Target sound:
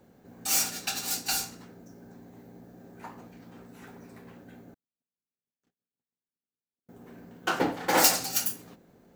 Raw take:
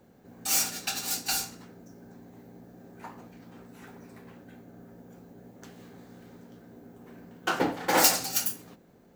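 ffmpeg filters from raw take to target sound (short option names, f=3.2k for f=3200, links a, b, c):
-filter_complex "[0:a]asettb=1/sr,asplit=3[a][b][c];[a]atrim=end=4.744[d];[b]atrim=start=4.74:end=6.89,asetpts=PTS-STARTPTS,afade=t=in:d=0.004:c=qsin,afade=t=out:st=2.146:d=0.004:c=qsin,agate=range=-56dB:threshold=-42dB:ratio=16:detection=peak[e];[c]atrim=start=6.886[f];[d][e]acrossfade=d=0.004:c1=hsin:c2=qsin[g];[g][f]acrossfade=d=0.004:c1=qsin:c2=hsin"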